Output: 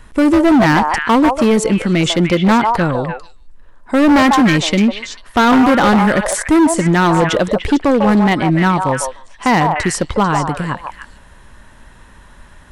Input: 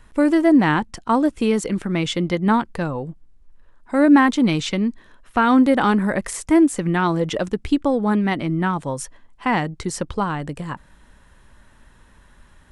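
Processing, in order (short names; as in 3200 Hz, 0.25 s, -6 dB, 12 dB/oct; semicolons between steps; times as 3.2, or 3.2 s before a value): delay with a stepping band-pass 0.148 s, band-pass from 790 Hz, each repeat 1.4 oct, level -1.5 dB; overloaded stage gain 16 dB; gain +8.5 dB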